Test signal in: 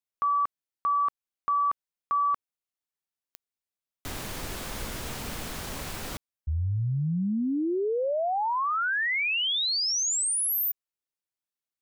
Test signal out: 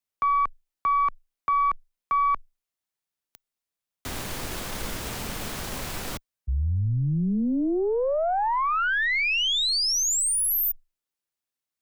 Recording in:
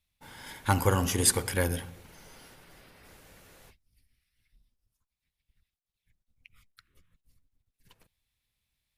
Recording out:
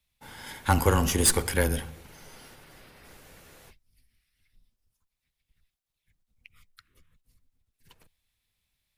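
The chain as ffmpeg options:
-af "aeval=exprs='(tanh(6.31*val(0)+0.5)-tanh(0.5))/6.31':c=same,afreqshift=-13,volume=5dB"

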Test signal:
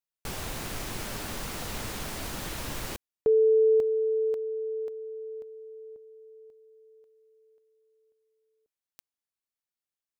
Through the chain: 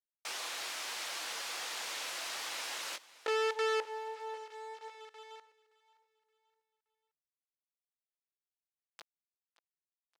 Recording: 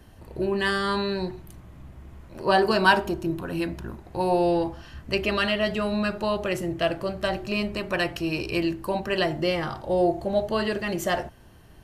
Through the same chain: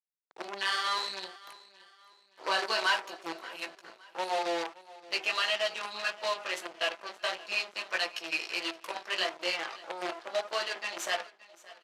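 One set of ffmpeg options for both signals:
-filter_complex "[0:a]aemphasis=mode=production:type=riaa,afftfilt=real='re*gte(hypot(re,im),0.0141)':imag='im*gte(hypot(re,im),0.0141)':win_size=1024:overlap=0.75,afftdn=nr=25:nf=-40,aecho=1:1:6:0.36,asplit=2[a][b];[b]acompressor=threshold=-38dB:ratio=5:attack=51:release=693:knee=1:detection=peak,volume=-1dB[c];[a][c]amix=inputs=2:normalize=0,flanger=delay=15.5:depth=3:speed=1.6,aeval=exprs='sgn(val(0))*max(abs(val(0))-0.00501,0)':c=same,acrusher=bits=5:dc=4:mix=0:aa=0.000001,asoftclip=type=tanh:threshold=-20.5dB,highpass=580,lowpass=4.7k,asplit=2[d][e];[e]aecho=0:1:572|1144|1716:0.1|0.039|0.0152[f];[d][f]amix=inputs=2:normalize=0"

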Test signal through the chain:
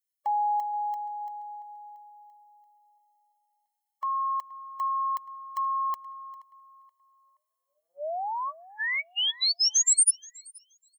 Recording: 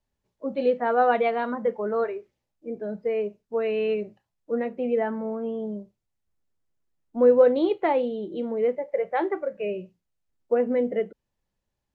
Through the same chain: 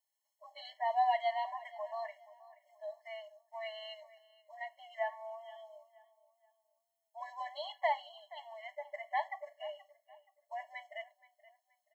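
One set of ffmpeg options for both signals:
-filter_complex "[0:a]crystalizer=i=4:c=0,asplit=2[a][b];[b]adelay=476,lowpass=f=3.1k:p=1,volume=-18dB,asplit=2[c][d];[d]adelay=476,lowpass=f=3.1k:p=1,volume=0.35,asplit=2[e][f];[f]adelay=476,lowpass=f=3.1k:p=1,volume=0.35[g];[a][c][e][g]amix=inputs=4:normalize=0,afftfilt=real='re*eq(mod(floor(b*sr/1024/560),2),1)':imag='im*eq(mod(floor(b*sr/1024/560),2),1)':win_size=1024:overlap=0.75,volume=-7.5dB"

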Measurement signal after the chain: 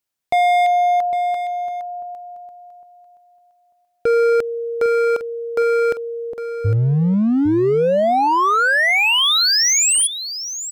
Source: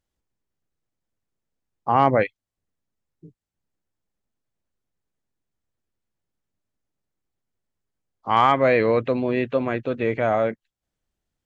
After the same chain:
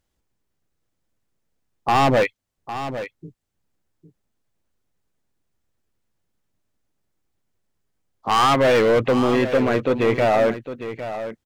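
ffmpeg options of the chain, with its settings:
-filter_complex "[0:a]volume=20dB,asoftclip=hard,volume=-20dB,asplit=2[a][b];[b]aecho=0:1:806:0.266[c];[a][c]amix=inputs=2:normalize=0,volume=6.5dB"

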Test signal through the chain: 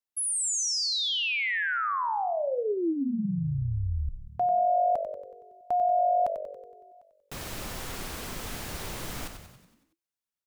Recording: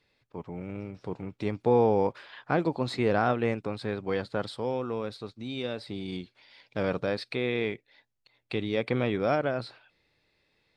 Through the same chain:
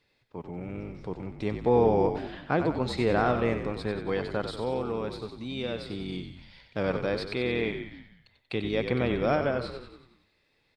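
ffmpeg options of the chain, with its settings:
-filter_complex "[0:a]asplit=8[a][b][c][d][e][f][g][h];[b]adelay=93,afreqshift=-48,volume=-8dB[i];[c]adelay=186,afreqshift=-96,volume=-13.2dB[j];[d]adelay=279,afreqshift=-144,volume=-18.4dB[k];[e]adelay=372,afreqshift=-192,volume=-23.6dB[l];[f]adelay=465,afreqshift=-240,volume=-28.8dB[m];[g]adelay=558,afreqshift=-288,volume=-34dB[n];[h]adelay=651,afreqshift=-336,volume=-39.2dB[o];[a][i][j][k][l][m][n][o]amix=inputs=8:normalize=0"

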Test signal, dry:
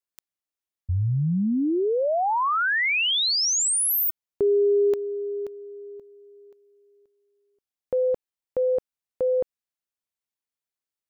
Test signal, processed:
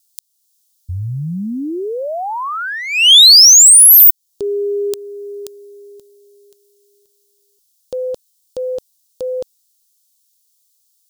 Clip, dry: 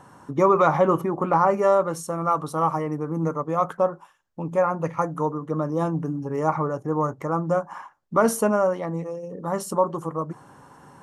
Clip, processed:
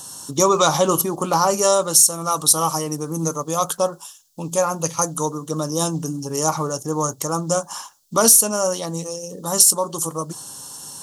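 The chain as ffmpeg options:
-af "aexciter=amount=10.3:drive=9.4:freq=3.3k,alimiter=limit=-2.5dB:level=0:latency=1:release=364,volume=1dB"

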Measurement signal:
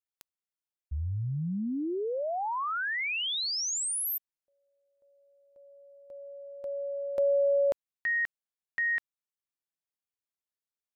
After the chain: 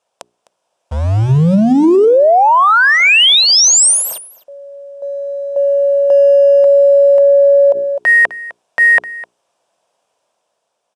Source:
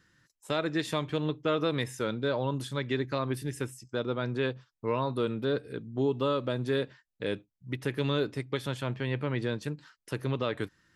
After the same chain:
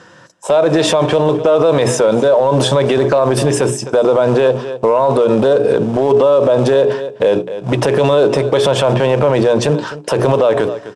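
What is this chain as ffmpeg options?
-filter_complex "[0:a]asplit=2[a][b];[b]acrusher=bits=2:mode=log:mix=0:aa=0.000001,volume=-9dB[c];[a][c]amix=inputs=2:normalize=0,highpass=150,equalizer=f=270:t=q:w=4:g=-4,equalizer=f=690:t=q:w=4:g=9,equalizer=f=970:t=q:w=4:g=8,equalizer=f=2k:t=q:w=4:g=-8,equalizer=f=4.3k:t=q:w=4:g=-7,equalizer=f=6.8k:t=q:w=4:g=-4,lowpass=f=8.3k:w=0.5412,lowpass=f=8.3k:w=1.3066,bandreject=f=60:t=h:w=6,bandreject=f=120:t=h:w=6,bandreject=f=180:t=h:w=6,bandreject=f=240:t=h:w=6,bandreject=f=300:t=h:w=6,bandreject=f=360:t=h:w=6,bandreject=f=420:t=h:w=6,dynaudnorm=f=150:g=11:m=4dB,equalizer=f=540:t=o:w=0.66:g=11.5,acompressor=threshold=-25dB:ratio=2.5:attack=0.64:release=59:knee=6:detection=peak,asplit=2[d][e];[e]aecho=0:1:256:0.1[f];[d][f]amix=inputs=2:normalize=0,alimiter=level_in=25.5dB:limit=-1dB:release=50:level=0:latency=1,volume=-3.5dB"

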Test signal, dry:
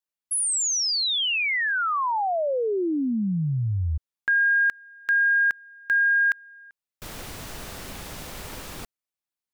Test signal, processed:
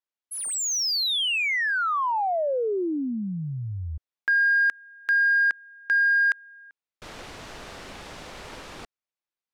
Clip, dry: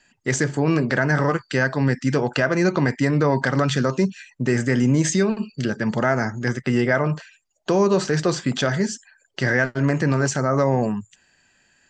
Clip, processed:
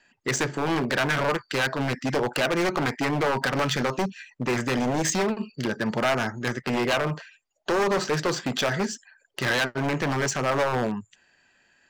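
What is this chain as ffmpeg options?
-af "adynamicsmooth=sensitivity=2.5:basefreq=5.2k,aeval=exprs='0.158*(abs(mod(val(0)/0.158+3,4)-2)-1)':c=same,bass=f=250:g=-7,treble=f=4k:g=1"

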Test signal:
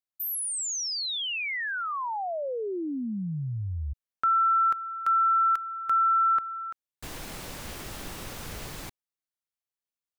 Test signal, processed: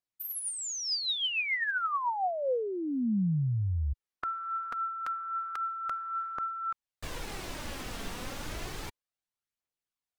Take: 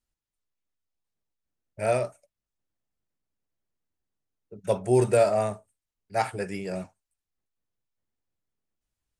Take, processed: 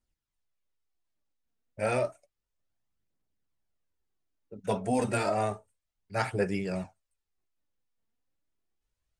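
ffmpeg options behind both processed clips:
-af "afftfilt=real='re*lt(hypot(re,im),0.501)':imag='im*lt(hypot(re,im),0.501)':win_size=1024:overlap=0.75,aphaser=in_gain=1:out_gain=1:delay=4.5:decay=0.39:speed=0.31:type=triangular,highshelf=f=10k:g=-11"

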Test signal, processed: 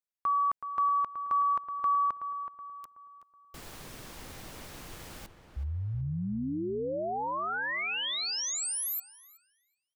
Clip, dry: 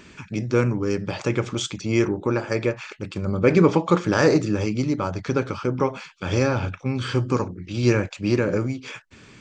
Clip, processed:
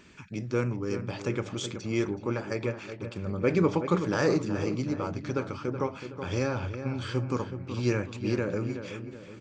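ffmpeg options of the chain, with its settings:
-filter_complex "[0:a]asplit=2[a][b];[b]adelay=374,lowpass=f=2.1k:p=1,volume=-9dB,asplit=2[c][d];[d]adelay=374,lowpass=f=2.1k:p=1,volume=0.46,asplit=2[e][f];[f]adelay=374,lowpass=f=2.1k:p=1,volume=0.46,asplit=2[g][h];[h]adelay=374,lowpass=f=2.1k:p=1,volume=0.46,asplit=2[i][j];[j]adelay=374,lowpass=f=2.1k:p=1,volume=0.46[k];[a][c][e][g][i][k]amix=inputs=6:normalize=0,volume=-8dB"

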